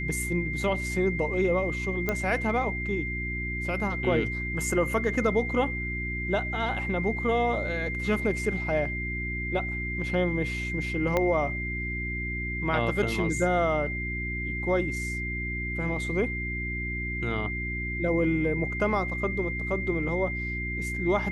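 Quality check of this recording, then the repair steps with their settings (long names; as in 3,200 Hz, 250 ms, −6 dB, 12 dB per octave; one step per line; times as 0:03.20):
mains hum 60 Hz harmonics 6 −34 dBFS
whistle 2,100 Hz −32 dBFS
0:02.09: click −13 dBFS
0:11.17: click −12 dBFS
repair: click removal
hum removal 60 Hz, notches 6
notch filter 2,100 Hz, Q 30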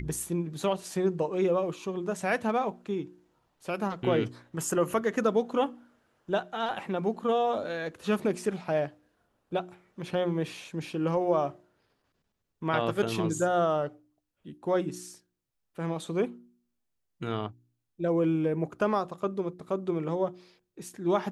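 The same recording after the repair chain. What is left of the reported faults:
0:11.17: click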